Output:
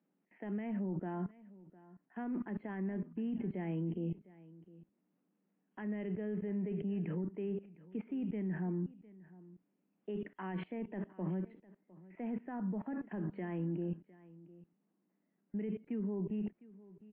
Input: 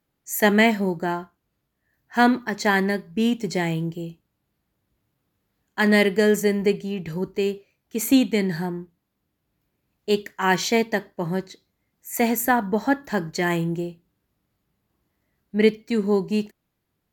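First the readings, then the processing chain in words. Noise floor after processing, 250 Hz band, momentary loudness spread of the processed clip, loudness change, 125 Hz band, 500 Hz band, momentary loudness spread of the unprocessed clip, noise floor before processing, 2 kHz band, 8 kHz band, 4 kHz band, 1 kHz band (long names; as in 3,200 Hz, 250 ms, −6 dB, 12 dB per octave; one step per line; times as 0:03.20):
−81 dBFS, −14.0 dB, 20 LU, −17.0 dB, −10.0 dB, −20.0 dB, 12 LU, −77 dBFS, −28.5 dB, below −40 dB, below −30 dB, −24.5 dB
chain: Chebyshev band-pass filter 180–2,900 Hz, order 5
reversed playback
downward compressor 12 to 1, threshold −27 dBFS, peak gain reduction 15.5 dB
reversed playback
low-shelf EQ 280 Hz +5.5 dB
output level in coarse steps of 22 dB
brickwall limiter −38 dBFS, peak gain reduction 7.5 dB
spectral tilt −3 dB per octave
single-tap delay 706 ms −20 dB
level +2 dB
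WMA 64 kbit/s 22,050 Hz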